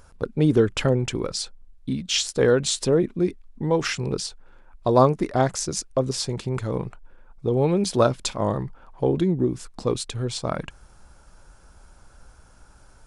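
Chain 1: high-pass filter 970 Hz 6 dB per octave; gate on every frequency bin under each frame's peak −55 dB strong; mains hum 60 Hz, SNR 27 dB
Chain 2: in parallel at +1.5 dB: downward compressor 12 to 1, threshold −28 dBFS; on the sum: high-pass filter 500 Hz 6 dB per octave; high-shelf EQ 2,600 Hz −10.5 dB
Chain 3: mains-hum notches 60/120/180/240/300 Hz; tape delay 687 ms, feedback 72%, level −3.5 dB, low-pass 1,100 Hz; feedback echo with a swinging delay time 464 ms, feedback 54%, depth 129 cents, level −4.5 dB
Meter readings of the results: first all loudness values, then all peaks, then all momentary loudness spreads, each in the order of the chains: −29.5, −26.5, −21.5 LKFS; −9.0, −5.0, −3.5 dBFS; 14, 11, 12 LU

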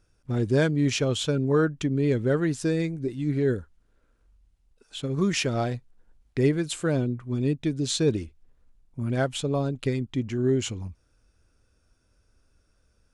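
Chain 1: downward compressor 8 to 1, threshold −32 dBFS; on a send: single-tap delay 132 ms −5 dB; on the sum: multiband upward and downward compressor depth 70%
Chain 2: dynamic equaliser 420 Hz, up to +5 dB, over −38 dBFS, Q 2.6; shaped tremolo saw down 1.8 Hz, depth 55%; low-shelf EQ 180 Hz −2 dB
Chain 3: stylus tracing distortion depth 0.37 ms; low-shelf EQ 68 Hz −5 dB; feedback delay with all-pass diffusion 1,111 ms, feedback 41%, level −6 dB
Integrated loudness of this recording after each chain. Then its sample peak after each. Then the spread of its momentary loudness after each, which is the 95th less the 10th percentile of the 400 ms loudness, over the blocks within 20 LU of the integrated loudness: −35.5, −28.0, −27.0 LKFS; −15.0, −12.0, −9.5 dBFS; 16, 11, 12 LU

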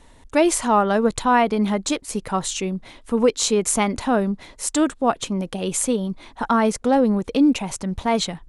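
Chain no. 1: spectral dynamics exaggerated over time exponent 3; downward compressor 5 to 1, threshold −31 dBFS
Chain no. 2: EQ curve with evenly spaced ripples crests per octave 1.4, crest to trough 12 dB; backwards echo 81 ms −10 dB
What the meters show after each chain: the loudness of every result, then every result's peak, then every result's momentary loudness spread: −36.0, −19.0 LKFS; −17.5, −2.5 dBFS; 6, 10 LU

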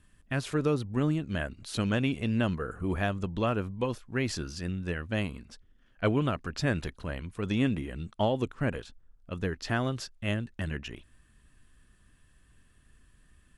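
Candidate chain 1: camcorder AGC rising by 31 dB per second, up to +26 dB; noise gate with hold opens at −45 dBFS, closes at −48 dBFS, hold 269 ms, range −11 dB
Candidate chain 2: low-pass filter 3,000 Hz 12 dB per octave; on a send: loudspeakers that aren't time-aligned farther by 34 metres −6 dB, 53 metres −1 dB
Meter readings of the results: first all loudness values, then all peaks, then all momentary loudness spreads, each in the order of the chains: −31.0, −29.0 LKFS; −11.0, −11.5 dBFS; 10, 9 LU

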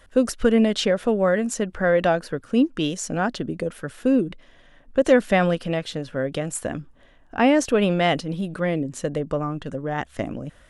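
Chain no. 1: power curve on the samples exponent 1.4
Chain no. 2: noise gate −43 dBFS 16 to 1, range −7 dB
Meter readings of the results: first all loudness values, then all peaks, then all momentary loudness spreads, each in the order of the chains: −26.0, −23.0 LKFS; −5.0, −5.0 dBFS; 15, 11 LU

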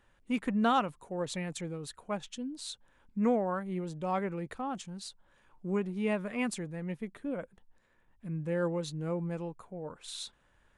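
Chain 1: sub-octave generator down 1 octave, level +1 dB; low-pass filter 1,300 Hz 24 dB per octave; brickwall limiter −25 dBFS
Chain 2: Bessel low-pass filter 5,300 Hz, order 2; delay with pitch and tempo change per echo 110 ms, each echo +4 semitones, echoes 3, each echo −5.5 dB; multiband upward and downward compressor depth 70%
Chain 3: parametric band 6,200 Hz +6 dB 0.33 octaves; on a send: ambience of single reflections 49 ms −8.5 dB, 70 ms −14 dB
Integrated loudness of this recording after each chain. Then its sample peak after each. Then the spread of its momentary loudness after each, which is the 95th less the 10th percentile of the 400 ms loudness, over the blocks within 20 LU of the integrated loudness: −36.0, −34.5, −34.0 LKFS; −25.0, −17.0, −15.5 dBFS; 10, 9, 14 LU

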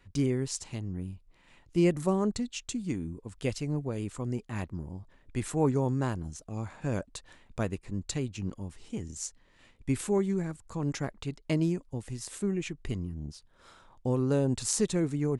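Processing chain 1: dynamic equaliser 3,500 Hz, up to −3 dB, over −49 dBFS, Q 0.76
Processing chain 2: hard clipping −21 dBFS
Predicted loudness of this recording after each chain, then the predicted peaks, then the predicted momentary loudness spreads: −32.5, −33.0 LKFS; −12.0, −21.0 dBFS; 13, 12 LU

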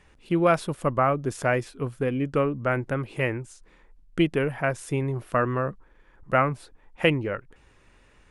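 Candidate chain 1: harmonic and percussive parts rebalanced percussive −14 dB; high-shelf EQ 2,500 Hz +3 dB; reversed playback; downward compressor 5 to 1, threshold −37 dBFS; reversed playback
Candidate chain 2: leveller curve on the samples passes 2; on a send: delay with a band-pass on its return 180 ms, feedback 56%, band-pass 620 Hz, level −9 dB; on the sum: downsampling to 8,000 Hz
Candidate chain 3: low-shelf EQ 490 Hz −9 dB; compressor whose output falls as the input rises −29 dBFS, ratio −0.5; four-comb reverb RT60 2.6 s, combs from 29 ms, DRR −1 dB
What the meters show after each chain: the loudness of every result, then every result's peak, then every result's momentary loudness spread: −41.0, −19.5, −30.5 LKFS; −26.5, −5.0, −14.0 dBFS; 7, 14, 9 LU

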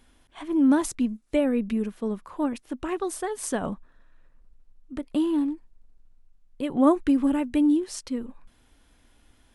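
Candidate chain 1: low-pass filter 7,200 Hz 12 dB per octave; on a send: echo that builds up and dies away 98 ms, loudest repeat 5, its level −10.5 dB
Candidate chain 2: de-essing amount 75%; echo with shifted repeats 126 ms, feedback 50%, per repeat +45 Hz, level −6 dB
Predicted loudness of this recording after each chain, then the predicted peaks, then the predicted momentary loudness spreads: −24.0, −24.5 LKFS; −9.0, −8.5 dBFS; 13, 17 LU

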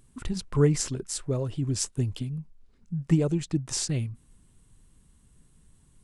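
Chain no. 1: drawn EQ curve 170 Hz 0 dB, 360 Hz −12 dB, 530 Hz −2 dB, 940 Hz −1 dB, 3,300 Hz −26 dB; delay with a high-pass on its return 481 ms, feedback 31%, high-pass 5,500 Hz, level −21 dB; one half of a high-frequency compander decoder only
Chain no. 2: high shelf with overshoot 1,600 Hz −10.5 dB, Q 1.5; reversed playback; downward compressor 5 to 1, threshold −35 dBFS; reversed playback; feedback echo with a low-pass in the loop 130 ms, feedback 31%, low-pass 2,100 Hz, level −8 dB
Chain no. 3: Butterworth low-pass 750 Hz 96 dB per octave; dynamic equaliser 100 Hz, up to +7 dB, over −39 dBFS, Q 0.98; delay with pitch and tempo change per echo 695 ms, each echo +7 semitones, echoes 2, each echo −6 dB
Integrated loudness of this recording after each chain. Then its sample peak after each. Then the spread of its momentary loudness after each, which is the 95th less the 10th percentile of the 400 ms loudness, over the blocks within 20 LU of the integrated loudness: −31.0, −39.0, −25.5 LKFS; −13.0, −25.0, −7.5 dBFS; 12, 10, 10 LU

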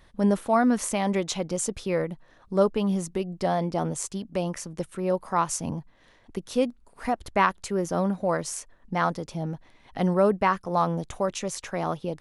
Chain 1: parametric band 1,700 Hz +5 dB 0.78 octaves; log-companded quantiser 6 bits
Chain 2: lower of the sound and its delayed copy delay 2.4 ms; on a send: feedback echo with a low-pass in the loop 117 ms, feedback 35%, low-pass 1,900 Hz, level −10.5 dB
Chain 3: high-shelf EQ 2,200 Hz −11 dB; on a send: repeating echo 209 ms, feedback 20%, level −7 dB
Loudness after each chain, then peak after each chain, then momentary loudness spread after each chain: −26.5, −28.0, −27.5 LKFS; −4.5, −10.5, −9.0 dBFS; 12, 11, 11 LU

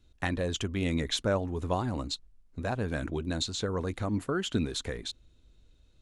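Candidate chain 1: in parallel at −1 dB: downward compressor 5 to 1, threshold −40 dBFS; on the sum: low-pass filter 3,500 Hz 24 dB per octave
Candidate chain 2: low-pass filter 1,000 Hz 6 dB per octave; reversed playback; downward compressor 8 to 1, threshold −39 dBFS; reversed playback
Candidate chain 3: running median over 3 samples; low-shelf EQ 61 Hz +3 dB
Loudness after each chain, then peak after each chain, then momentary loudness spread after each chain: −30.5, −44.0, −32.0 LKFS; −13.5, −31.0, −15.5 dBFS; 8, 4, 8 LU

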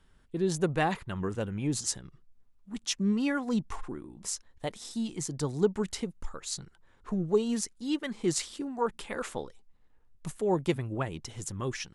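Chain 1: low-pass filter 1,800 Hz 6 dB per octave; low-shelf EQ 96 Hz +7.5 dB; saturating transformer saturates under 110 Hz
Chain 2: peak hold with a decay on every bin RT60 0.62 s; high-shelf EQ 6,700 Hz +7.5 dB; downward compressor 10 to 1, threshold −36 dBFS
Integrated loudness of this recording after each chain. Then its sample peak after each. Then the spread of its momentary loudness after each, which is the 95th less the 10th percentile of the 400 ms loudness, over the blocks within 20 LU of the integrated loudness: −32.0, −40.0 LKFS; −13.0, −22.0 dBFS; 16, 7 LU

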